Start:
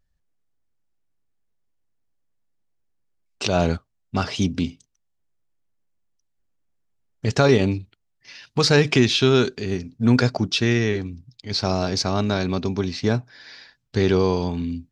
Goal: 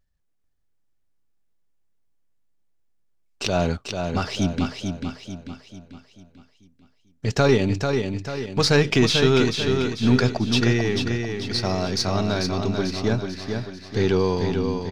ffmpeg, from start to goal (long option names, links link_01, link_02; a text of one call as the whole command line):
ffmpeg -i in.wav -af "aeval=exprs='if(lt(val(0),0),0.708*val(0),val(0))':channel_layout=same,aecho=1:1:442|884|1326|1768|2210|2652:0.531|0.244|0.112|0.0517|0.0238|0.0109" out.wav